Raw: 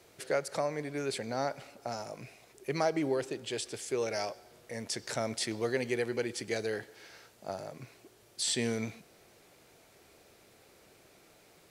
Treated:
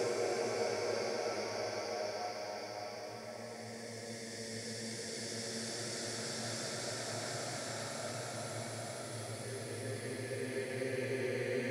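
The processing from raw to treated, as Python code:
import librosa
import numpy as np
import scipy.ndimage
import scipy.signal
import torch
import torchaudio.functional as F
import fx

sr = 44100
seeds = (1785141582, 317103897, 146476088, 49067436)

y = fx.spec_box(x, sr, start_s=5.2, length_s=0.54, low_hz=210.0, high_hz=9300.0, gain_db=-12)
y = fx.paulstretch(y, sr, seeds[0], factor=6.7, window_s=1.0, from_s=4.03)
y = y * librosa.db_to_amplitude(-2.0)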